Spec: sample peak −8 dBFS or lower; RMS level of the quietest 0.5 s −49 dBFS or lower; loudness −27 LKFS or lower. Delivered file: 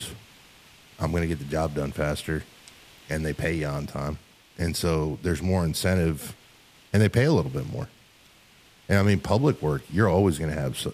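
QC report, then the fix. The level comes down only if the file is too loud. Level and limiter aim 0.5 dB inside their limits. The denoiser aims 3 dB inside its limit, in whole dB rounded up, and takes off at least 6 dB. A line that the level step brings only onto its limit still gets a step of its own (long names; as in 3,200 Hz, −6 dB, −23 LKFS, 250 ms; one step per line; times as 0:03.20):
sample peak −8.5 dBFS: in spec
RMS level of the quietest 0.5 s −56 dBFS: in spec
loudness −26.0 LKFS: out of spec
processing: level −1.5 dB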